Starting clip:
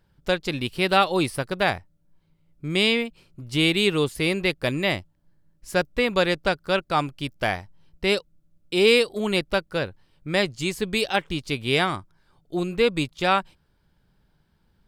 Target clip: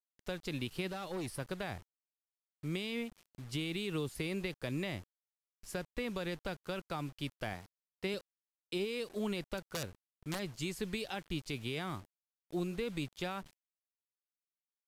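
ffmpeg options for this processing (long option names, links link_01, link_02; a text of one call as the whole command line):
ffmpeg -i in.wav -filter_complex "[0:a]asettb=1/sr,asplit=3[link_01][link_02][link_03];[link_01]atrim=end=7.534[link_04];[link_02]atrim=start=7.53:end=8.14,asetpts=PTS-STARTPTS,afade=type=in:duration=0.004:curve=qsin,afade=type=out:start_time=0.606:duration=0.004:curve=qsin,highpass=110[link_05];[link_03]atrim=start=8.136[link_06];[link_04][link_05]acrossfade=duration=0.004:curve1=hsin:curve2=qsin[link_07];[link_07][link_06]acrossfade=duration=0.004:curve1=qsin:curve2=hsin,alimiter=limit=-14.5dB:level=0:latency=1:release=32,acrossover=split=300[link_08][link_09];[link_09]acompressor=threshold=-29dB:ratio=5[link_10];[link_08][link_10]amix=inputs=2:normalize=0,asplit=3[link_11][link_12][link_13];[link_11]afade=type=out:start_time=9.57:duration=0.02[link_14];[link_12]aeval=exprs='(mod(10.6*val(0)+1,2)-1)/10.6':channel_layout=same,afade=type=in:start_time=9.57:duration=0.02,afade=type=out:start_time=10.38:duration=0.02[link_15];[link_13]afade=type=in:start_time=10.38:duration=0.02[link_16];[link_14][link_15][link_16]amix=inputs=3:normalize=0,acrusher=bits=7:mix=0:aa=0.000001,asplit=3[link_17][link_18][link_19];[link_17]afade=type=out:start_time=0.88:duration=0.02[link_20];[link_18]asoftclip=type=hard:threshold=-27.5dB,afade=type=in:start_time=0.88:duration=0.02,afade=type=out:start_time=1.38:duration=0.02[link_21];[link_19]afade=type=in:start_time=1.38:duration=0.02[link_22];[link_20][link_21][link_22]amix=inputs=3:normalize=0,aresample=32000,aresample=44100,volume=-8.5dB" out.wav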